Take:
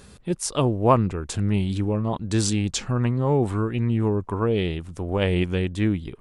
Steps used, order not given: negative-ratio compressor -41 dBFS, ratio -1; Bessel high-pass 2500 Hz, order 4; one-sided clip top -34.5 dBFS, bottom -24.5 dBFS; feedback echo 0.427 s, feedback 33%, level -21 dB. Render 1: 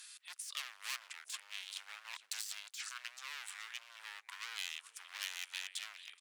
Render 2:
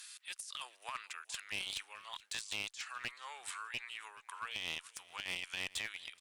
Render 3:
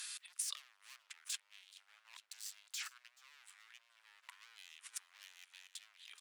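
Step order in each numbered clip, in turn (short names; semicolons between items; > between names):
feedback echo > one-sided clip > Bessel high-pass > negative-ratio compressor; Bessel high-pass > negative-ratio compressor > one-sided clip > feedback echo; one-sided clip > feedback echo > negative-ratio compressor > Bessel high-pass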